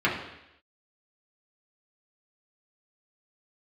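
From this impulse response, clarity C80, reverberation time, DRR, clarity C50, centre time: 8.5 dB, 0.85 s, −6.0 dB, 5.5 dB, 36 ms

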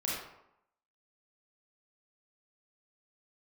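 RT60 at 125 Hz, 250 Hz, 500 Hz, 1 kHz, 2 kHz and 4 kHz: 0.70, 0.80, 0.75, 0.85, 0.65, 0.50 seconds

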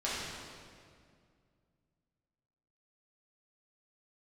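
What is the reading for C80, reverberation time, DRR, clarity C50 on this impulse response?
0.0 dB, 2.1 s, −9.5 dB, −2.5 dB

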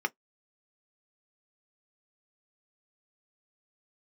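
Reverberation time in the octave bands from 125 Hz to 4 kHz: 0.10, 0.10, 0.10, 0.10, 0.10, 0.10 seconds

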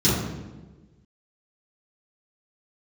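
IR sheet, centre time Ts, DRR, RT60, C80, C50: 73 ms, −12.0 dB, 1.3 s, 3.5 dB, −0.5 dB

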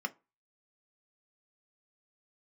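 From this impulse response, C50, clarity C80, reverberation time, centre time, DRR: 23.5 dB, 31.0 dB, 0.30 s, 3 ms, 7.0 dB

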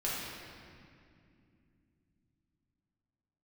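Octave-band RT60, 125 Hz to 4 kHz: 4.7, 4.4, 2.7, 2.1, 2.2, 1.7 seconds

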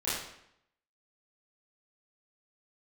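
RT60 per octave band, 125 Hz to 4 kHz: 0.75, 0.80, 0.75, 0.75, 0.75, 0.65 seconds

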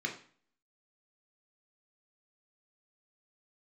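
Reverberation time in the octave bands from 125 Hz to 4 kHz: 0.50, 0.55, 0.45, 0.45, 0.45, 0.40 seconds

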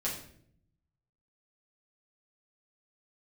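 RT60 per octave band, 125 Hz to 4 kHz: 1.3, 1.0, 0.75, 0.50, 0.55, 0.50 seconds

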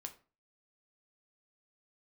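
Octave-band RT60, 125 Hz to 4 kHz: 0.45, 0.40, 0.35, 0.35, 0.30, 0.25 seconds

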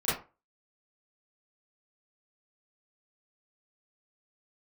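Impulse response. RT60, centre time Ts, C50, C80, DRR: 0.30 s, 48 ms, 2.5 dB, 10.5 dB, −13.0 dB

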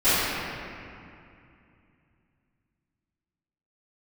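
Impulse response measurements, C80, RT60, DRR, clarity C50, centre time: −3.0 dB, 2.5 s, −22.0 dB, −6.0 dB, 192 ms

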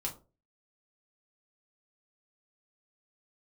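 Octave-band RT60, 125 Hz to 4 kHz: 0.45, 0.40, 0.40, 0.30, 0.20, 0.20 seconds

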